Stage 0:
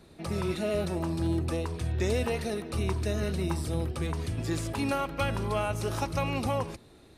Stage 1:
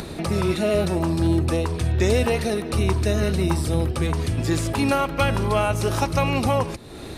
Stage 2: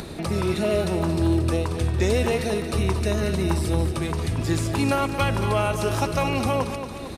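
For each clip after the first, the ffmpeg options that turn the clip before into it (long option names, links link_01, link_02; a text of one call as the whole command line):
ffmpeg -i in.wav -af "acompressor=mode=upward:threshold=-31dB:ratio=2.5,volume=8.5dB" out.wav
ffmpeg -i in.wav -af "aecho=1:1:228|456|684|912|1140|1368:0.355|0.192|0.103|0.0559|0.0302|0.0163,volume=-2dB" out.wav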